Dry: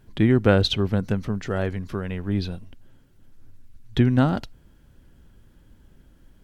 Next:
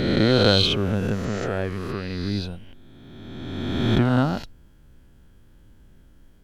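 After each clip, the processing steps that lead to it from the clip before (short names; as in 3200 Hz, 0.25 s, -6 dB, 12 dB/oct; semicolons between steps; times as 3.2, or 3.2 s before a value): spectral swells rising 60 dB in 2.00 s; gain -3 dB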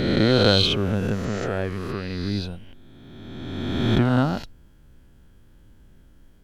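nothing audible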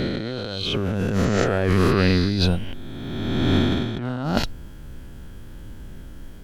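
negative-ratio compressor -30 dBFS, ratio -1; gain +7.5 dB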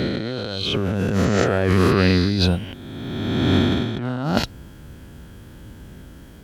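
HPF 61 Hz; gain +2 dB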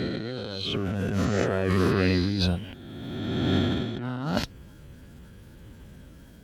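bin magnitudes rounded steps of 15 dB; gain -6 dB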